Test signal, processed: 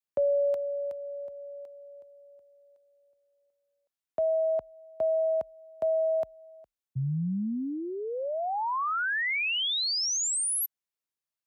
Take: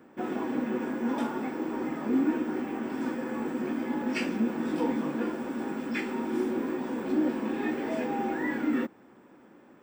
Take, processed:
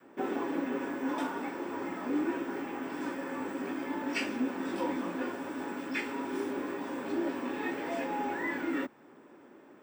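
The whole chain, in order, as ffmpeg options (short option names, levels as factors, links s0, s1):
-af "adynamicequalizer=threshold=0.00794:dfrequency=330:dqfactor=1.1:tfrequency=330:tqfactor=1.1:attack=5:release=100:ratio=0.375:range=3.5:mode=cutabove:tftype=bell,afreqshift=32"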